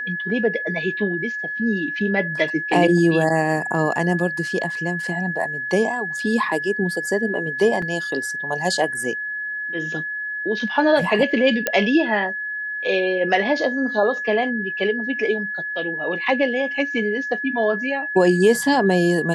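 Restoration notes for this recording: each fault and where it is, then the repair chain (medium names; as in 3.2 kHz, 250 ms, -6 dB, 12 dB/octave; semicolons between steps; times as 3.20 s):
whine 1.7 kHz -25 dBFS
7.82 s: dropout 3.8 ms
11.67 s: pop -4 dBFS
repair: de-click; band-stop 1.7 kHz, Q 30; interpolate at 7.82 s, 3.8 ms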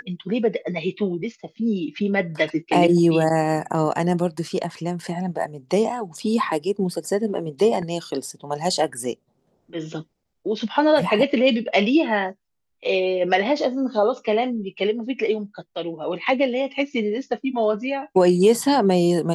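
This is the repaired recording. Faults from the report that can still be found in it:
11.67 s: pop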